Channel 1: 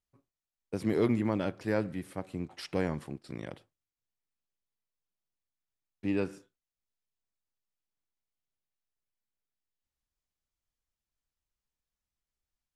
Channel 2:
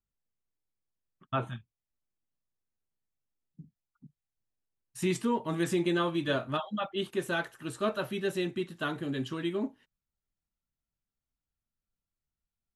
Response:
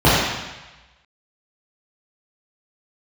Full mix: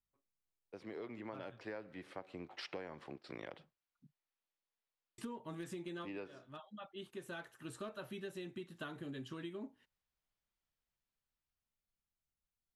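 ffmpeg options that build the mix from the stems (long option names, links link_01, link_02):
-filter_complex "[0:a]acrossover=split=360 5100:gain=0.2 1 0.0794[link_01][link_02][link_03];[link_01][link_02][link_03]amix=inputs=3:normalize=0,dynaudnorm=framelen=270:gausssize=13:maxgain=14dB,volume=-12.5dB,asplit=2[link_04][link_05];[1:a]volume=20.5dB,asoftclip=hard,volume=-20.5dB,volume=-5.5dB,asplit=3[link_06][link_07][link_08];[link_06]atrim=end=4.13,asetpts=PTS-STARTPTS,afade=type=out:start_time=4.126:duration=0.004:curve=hsin[link_09];[link_07]atrim=start=4.13:end=5.18,asetpts=PTS-STARTPTS,volume=0[link_10];[link_08]atrim=start=5.18,asetpts=PTS-STARTPTS,afade=type=in:duration=0.004:curve=hsin[link_11];[link_09][link_10][link_11]concat=n=3:v=0:a=1[link_12];[link_05]apad=whole_len=562685[link_13];[link_12][link_13]sidechaincompress=threshold=-48dB:ratio=4:attack=11:release=1190[link_14];[link_04][link_14]amix=inputs=2:normalize=0,acompressor=threshold=-42dB:ratio=10"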